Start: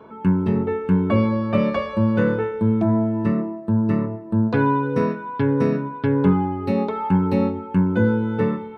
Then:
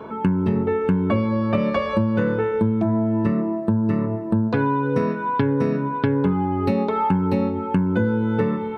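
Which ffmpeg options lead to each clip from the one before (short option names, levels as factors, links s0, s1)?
-af "acompressor=threshold=0.0501:ratio=6,volume=2.66"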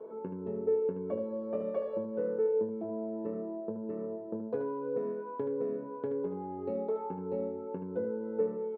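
-filter_complex "[0:a]bandpass=f=470:t=q:w=4.4:csg=0,asplit=2[s0][s1];[s1]aecho=0:1:23|76:0.335|0.398[s2];[s0][s2]amix=inputs=2:normalize=0,volume=0.596"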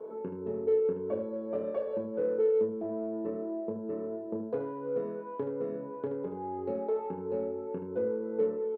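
-filter_complex "[0:a]asplit=2[s0][s1];[s1]asoftclip=type=tanh:threshold=0.0211,volume=0.251[s2];[s0][s2]amix=inputs=2:normalize=0,asplit=2[s3][s4];[s4]adelay=30,volume=0.473[s5];[s3][s5]amix=inputs=2:normalize=0"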